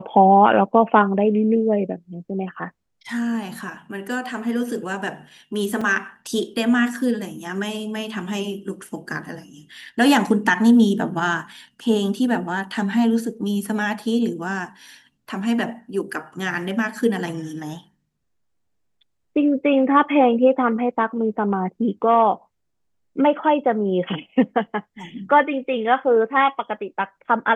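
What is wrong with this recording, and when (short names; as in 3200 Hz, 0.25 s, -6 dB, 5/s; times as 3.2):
5.81 gap 4.4 ms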